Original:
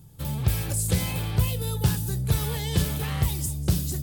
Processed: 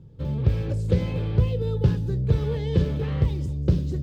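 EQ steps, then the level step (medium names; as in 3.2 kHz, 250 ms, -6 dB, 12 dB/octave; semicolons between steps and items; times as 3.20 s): distance through air 210 m; resonant low shelf 620 Hz +6.5 dB, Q 3; peaking EQ 910 Hz +4.5 dB 0.8 oct; -4.0 dB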